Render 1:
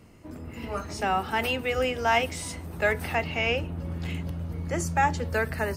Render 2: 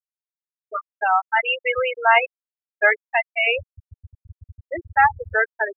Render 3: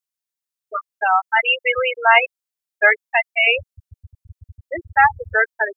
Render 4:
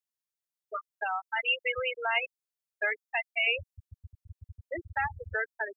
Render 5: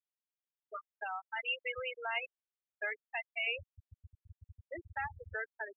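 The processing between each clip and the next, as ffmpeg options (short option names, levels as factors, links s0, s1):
-af "equalizer=f=1600:w=0.46:g=11,afftfilt=real='re*gte(hypot(re,im),0.355)':imag='im*gte(hypot(re,im),0.355)':win_size=1024:overlap=0.75"
-af "highshelf=f=2700:g=8,volume=1.12"
-filter_complex "[0:a]acrossover=split=300|3000[s0][s1][s2];[s1]acompressor=threshold=0.0398:ratio=3[s3];[s0][s3][s2]amix=inputs=3:normalize=0,volume=0.501"
-af "aresample=8000,aresample=44100,volume=0.398"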